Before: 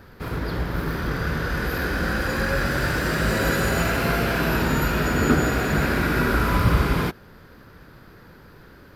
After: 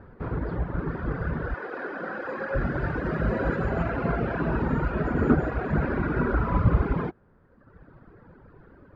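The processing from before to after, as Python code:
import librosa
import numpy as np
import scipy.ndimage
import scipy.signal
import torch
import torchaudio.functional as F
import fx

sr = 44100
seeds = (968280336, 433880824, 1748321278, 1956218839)

y = fx.highpass(x, sr, hz=370.0, slope=12, at=(1.54, 2.55))
y = fx.dereverb_blind(y, sr, rt60_s=1.3)
y = scipy.signal.sosfilt(scipy.signal.butter(2, 1200.0, 'lowpass', fs=sr, output='sos'), y)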